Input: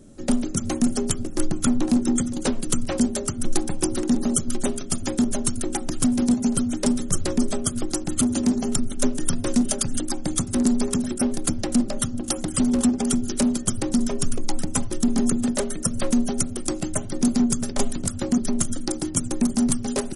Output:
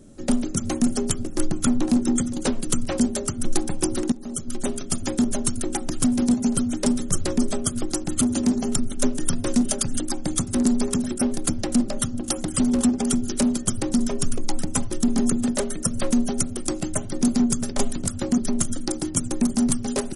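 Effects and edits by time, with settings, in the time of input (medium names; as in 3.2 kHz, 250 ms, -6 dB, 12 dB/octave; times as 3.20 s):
4.12–4.81 s: fade in, from -20.5 dB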